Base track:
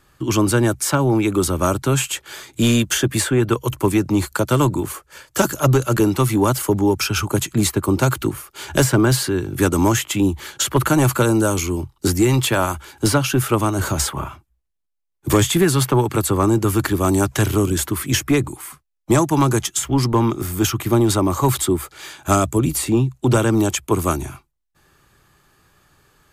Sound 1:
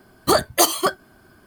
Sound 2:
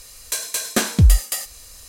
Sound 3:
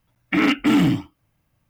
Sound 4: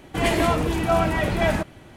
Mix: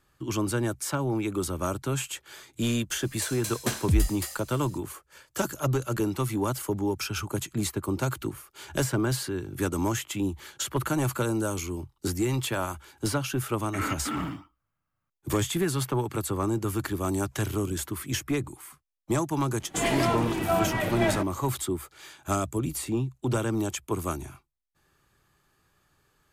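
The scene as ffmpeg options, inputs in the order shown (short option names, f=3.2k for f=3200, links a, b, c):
-filter_complex "[0:a]volume=-11dB[a];[3:a]equalizer=f=1.3k:w=2.1:g=14.5[b];[4:a]equalizer=f=65:w=1.3:g=-14[c];[2:a]atrim=end=1.88,asetpts=PTS-STARTPTS,volume=-10.5dB,afade=t=in:d=0.004:c=hsin,afade=t=out:st=1.876:d=0.004:c=hsin,adelay=2900[d];[b]atrim=end=1.69,asetpts=PTS-STARTPTS,volume=-17.5dB,afade=t=in:d=0.004:c=hsin,afade=t=out:st=1.686:d=0.004:c=hsin,adelay=13410[e];[c]atrim=end=1.96,asetpts=PTS-STARTPTS,volume=-4.5dB,afade=t=in:d=0.004:c=hsin,afade=t=out:st=1.956:d=0.004:c=hsin,adelay=19600[f];[a][d][e][f]amix=inputs=4:normalize=0"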